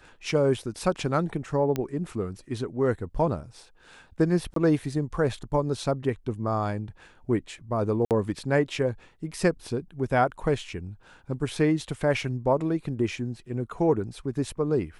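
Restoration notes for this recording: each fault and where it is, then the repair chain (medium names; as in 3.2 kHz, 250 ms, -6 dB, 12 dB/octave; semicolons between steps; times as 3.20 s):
1.76 s: pop -15 dBFS
4.54–4.56 s: dropout 23 ms
8.05–8.11 s: dropout 58 ms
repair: de-click; interpolate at 4.54 s, 23 ms; interpolate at 8.05 s, 58 ms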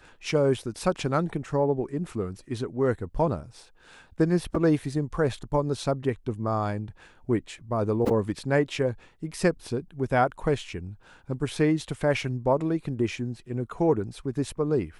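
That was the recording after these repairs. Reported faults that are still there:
1.76 s: pop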